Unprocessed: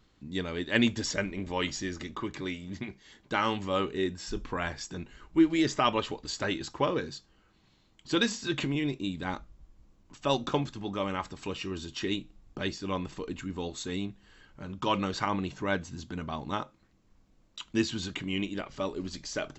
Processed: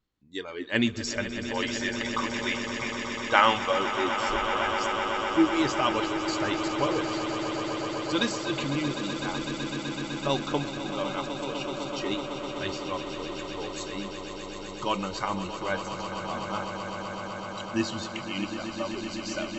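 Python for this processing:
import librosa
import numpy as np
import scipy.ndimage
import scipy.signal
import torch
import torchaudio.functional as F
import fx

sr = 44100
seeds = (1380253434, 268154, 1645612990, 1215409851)

y = fx.spec_box(x, sr, start_s=1.68, length_s=2.04, low_hz=460.0, high_hz=3800.0, gain_db=9)
y = fx.noise_reduce_blind(y, sr, reduce_db=17)
y = fx.echo_swell(y, sr, ms=126, loudest=8, wet_db=-11.5)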